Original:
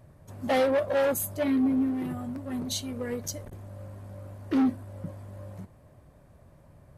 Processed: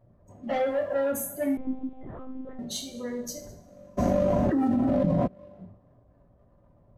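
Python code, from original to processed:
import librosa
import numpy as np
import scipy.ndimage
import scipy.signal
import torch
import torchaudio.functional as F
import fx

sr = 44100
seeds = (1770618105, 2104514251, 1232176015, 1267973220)

y = fx.spec_gate(x, sr, threshold_db=-25, keep='strong')
y = fx.hum_notches(y, sr, base_hz=50, count=7)
y = fx.leveller(y, sr, passes=1)
y = y + 10.0 ** (-22.5 / 20.0) * np.pad(y, (int(207 * sr / 1000.0), 0))[:len(y)]
y = fx.rev_double_slope(y, sr, seeds[0], early_s=0.5, late_s=2.2, knee_db=-26, drr_db=0.0)
y = fx.lpc_monotone(y, sr, seeds[1], pitch_hz=260.0, order=8, at=(1.57, 2.59))
y = fx.env_flatten(y, sr, amount_pct=100, at=(3.97, 5.26), fade=0.02)
y = y * 10.0 ** (-8.0 / 20.0)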